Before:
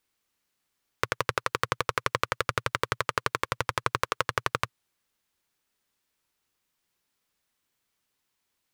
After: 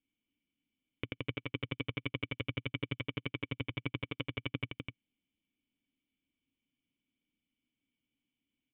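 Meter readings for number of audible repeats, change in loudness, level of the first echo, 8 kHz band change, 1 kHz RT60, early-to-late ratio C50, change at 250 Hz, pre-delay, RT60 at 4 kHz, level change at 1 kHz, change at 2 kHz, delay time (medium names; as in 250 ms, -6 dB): 1, -10.0 dB, -5.0 dB, under -40 dB, no reverb, no reverb, +3.0 dB, no reverb, no reverb, -23.0 dB, -10.5 dB, 250 ms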